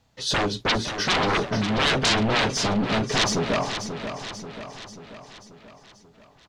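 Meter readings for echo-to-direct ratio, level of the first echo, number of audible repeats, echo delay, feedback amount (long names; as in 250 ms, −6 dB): −7.5 dB, −9.0 dB, 6, 536 ms, 55%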